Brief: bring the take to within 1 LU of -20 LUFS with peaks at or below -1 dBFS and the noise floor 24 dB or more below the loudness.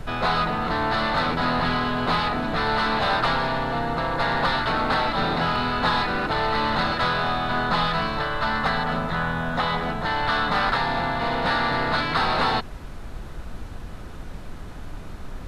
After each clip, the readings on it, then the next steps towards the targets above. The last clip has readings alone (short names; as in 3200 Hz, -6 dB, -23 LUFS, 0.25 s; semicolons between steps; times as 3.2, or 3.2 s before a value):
noise floor -36 dBFS; noise floor target -47 dBFS; loudness -23.0 LUFS; peak -9.5 dBFS; loudness target -20.0 LUFS
-> noise print and reduce 11 dB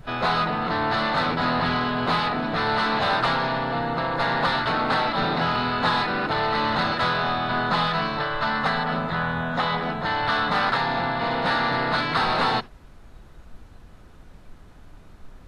noise floor -47 dBFS; noise floor target -48 dBFS
-> noise print and reduce 6 dB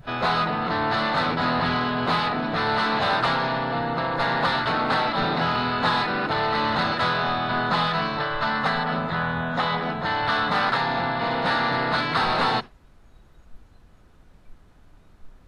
noise floor -53 dBFS; loudness -23.5 LUFS; peak -10.0 dBFS; loudness target -20.0 LUFS
-> gain +3.5 dB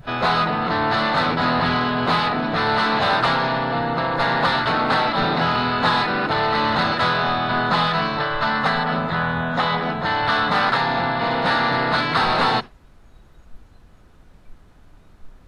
loudness -20.0 LUFS; peak -6.5 dBFS; noise floor -49 dBFS